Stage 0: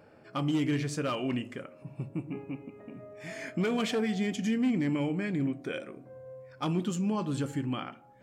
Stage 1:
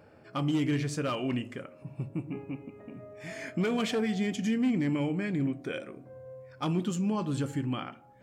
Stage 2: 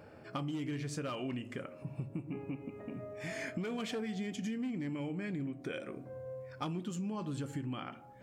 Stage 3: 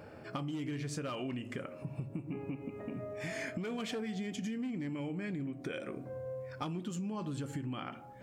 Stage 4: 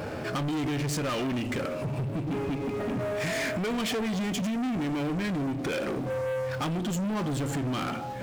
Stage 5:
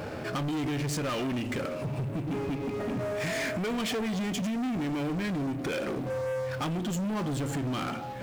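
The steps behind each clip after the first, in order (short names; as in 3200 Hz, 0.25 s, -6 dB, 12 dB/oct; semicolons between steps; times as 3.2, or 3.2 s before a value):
bell 80 Hz +6 dB 0.9 oct
compressor 6:1, threshold -38 dBFS, peak gain reduction 13.5 dB; gain +2 dB
compressor 2.5:1, threshold -40 dBFS, peak gain reduction 5 dB; gain +3.5 dB
sample leveller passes 5; gain -1.5 dB
G.711 law mismatch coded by A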